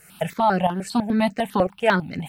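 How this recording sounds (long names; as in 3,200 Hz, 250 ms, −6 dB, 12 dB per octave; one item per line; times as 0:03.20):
tremolo saw up 3 Hz, depth 70%
a quantiser's noise floor 12 bits, dither none
notches that jump at a steady rate 10 Hz 940–3,400 Hz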